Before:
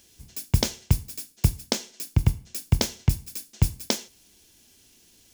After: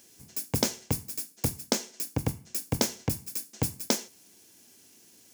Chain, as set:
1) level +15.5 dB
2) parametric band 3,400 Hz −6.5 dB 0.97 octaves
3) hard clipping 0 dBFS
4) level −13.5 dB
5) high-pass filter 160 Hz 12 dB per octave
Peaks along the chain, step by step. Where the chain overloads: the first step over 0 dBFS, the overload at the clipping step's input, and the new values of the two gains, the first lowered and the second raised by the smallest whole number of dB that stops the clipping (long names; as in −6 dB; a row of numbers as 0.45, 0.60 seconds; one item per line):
+9.0, +9.0, 0.0, −13.5, −9.5 dBFS
step 1, 9.0 dB
step 1 +6.5 dB, step 4 −4.5 dB